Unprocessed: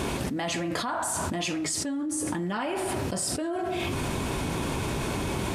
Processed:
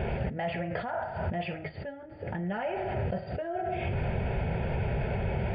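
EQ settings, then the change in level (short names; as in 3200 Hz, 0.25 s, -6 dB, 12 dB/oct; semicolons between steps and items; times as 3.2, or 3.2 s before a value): brick-wall FIR low-pass 4800 Hz; tilt shelf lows +4.5 dB; fixed phaser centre 1100 Hz, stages 6; 0.0 dB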